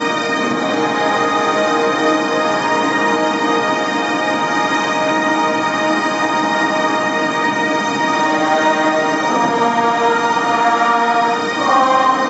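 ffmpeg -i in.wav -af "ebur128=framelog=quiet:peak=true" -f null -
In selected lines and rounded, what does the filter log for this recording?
Integrated loudness:
  I:         -15.1 LUFS
  Threshold: -25.1 LUFS
Loudness range:
  LRA:         1.3 LU
  Threshold: -35.2 LUFS
  LRA low:   -15.6 LUFS
  LRA high:  -14.3 LUFS
True peak:
  Peak:       -1.4 dBFS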